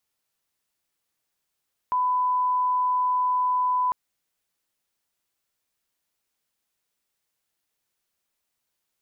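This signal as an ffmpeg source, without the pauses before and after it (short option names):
-f lavfi -i "sine=f=1000:d=2:r=44100,volume=-1.94dB"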